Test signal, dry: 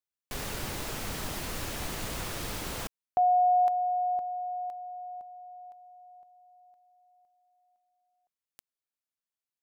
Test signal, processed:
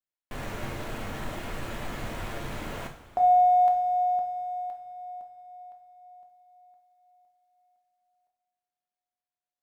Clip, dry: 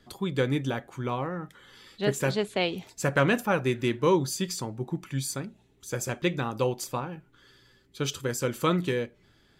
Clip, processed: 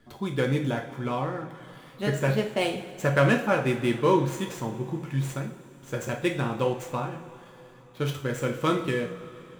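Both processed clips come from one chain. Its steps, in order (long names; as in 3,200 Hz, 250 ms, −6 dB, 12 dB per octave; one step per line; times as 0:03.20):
running median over 9 samples
coupled-rooms reverb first 0.47 s, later 4.2 s, from −19 dB, DRR 1.5 dB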